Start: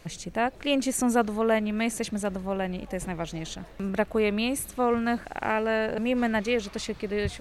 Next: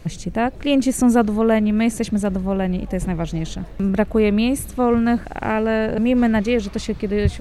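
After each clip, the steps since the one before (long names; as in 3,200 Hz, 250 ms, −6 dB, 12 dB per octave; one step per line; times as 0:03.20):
low-shelf EQ 330 Hz +12 dB
level +2.5 dB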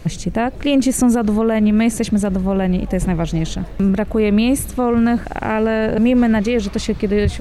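brickwall limiter −12.5 dBFS, peak gain reduction 10 dB
level +5 dB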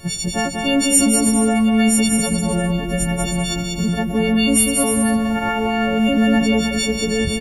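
every partial snapped to a pitch grid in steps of 4 semitones
on a send: bouncing-ball delay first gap 190 ms, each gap 0.65×, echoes 5
on the sum: level −4 dB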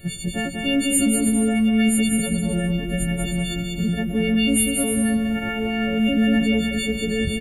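phaser with its sweep stopped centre 2,400 Hz, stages 4
level −2 dB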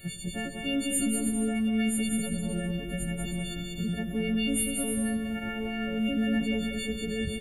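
on a send at −12 dB: convolution reverb RT60 1.4 s, pre-delay 30 ms
on the sum: one half of a high-frequency compander encoder only
level −8.5 dB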